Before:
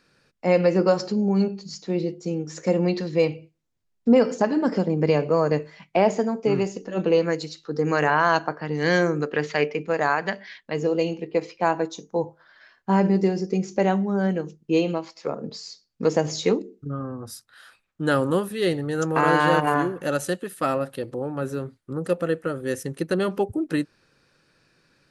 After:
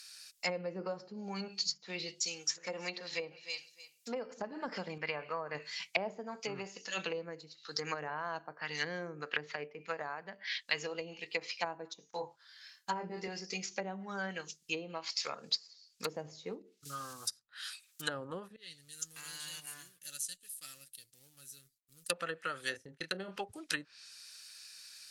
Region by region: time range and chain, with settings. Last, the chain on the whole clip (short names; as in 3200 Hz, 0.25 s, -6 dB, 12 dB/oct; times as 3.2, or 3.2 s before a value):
2.2–4.4 HPF 360 Hz 6 dB/oct + feedback echo 0.302 s, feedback 18%, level -15 dB
4.98–5.55 LPF 1700 Hz + tilt shelf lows -6 dB, about 1200 Hz
12.1–13.28 gate -48 dBFS, range -10 dB + bell 190 Hz -2.5 dB 2.1 oct + doubler 28 ms -3 dB
16.04–18.02 block floating point 7-bit + high shelf 8100 Hz +6 dB
18.56–22.1 G.711 law mismatch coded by A + passive tone stack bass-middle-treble 10-0-1 + comb 6.9 ms, depth 32%
22.69–23.36 gate -38 dBFS, range -28 dB + bell 1100 Hz -8 dB 0.36 oct + doubler 26 ms -7.5 dB
whole clip: pre-emphasis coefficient 0.97; treble ducked by the level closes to 490 Hz, closed at -38 dBFS; EQ curve 180 Hz 0 dB, 320 Hz -5 dB, 4600 Hz +14 dB; gain +7 dB